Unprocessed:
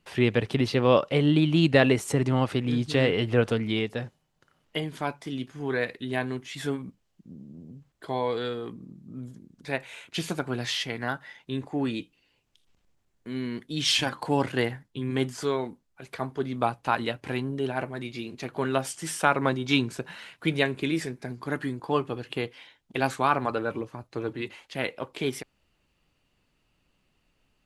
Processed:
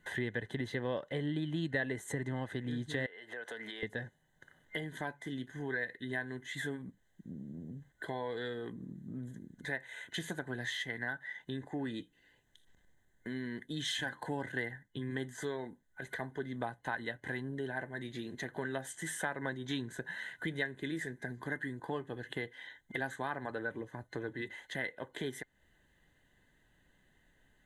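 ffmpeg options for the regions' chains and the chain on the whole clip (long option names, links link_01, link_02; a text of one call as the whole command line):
ffmpeg -i in.wav -filter_complex "[0:a]asettb=1/sr,asplit=3[link_01][link_02][link_03];[link_01]atrim=end=3.064[link_04];[link_02]atrim=start=3.06:end=3.83,asetpts=PTS-STARTPTS,afade=type=in:duration=0.004:curve=qsin,afade=type=out:start_time=0.766:duration=0.004:curve=qsin,highpass=570,acompressor=threshold=-40dB:ratio=4:attack=3.2:release=140:knee=1:detection=peak[link_05];[link_03]atrim=start=3.826[link_06];[link_04][link_05]acrossfade=duration=0.004:curve1=hsin:curve2=qsin[link_07];[link_07][link_06]acrossfade=duration=0.004:curve1=qsin:curve2=hsin,superequalizer=10b=0.501:11b=3.16:12b=0.316:14b=0.282,acompressor=threshold=-42dB:ratio=2.5,volume=1dB" out.wav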